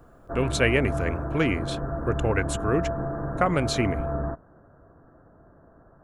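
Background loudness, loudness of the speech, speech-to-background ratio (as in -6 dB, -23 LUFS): -31.0 LUFS, -26.5 LUFS, 4.5 dB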